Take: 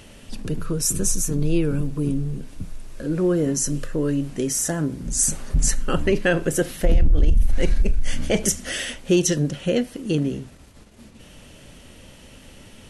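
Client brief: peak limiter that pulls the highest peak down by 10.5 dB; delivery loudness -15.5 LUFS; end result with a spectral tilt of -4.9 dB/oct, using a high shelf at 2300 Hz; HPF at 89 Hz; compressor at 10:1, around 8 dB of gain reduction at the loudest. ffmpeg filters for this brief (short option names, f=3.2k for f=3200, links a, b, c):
-af "highpass=89,highshelf=f=2.3k:g=-5.5,acompressor=threshold=-22dB:ratio=10,volume=17.5dB,alimiter=limit=-6dB:level=0:latency=1"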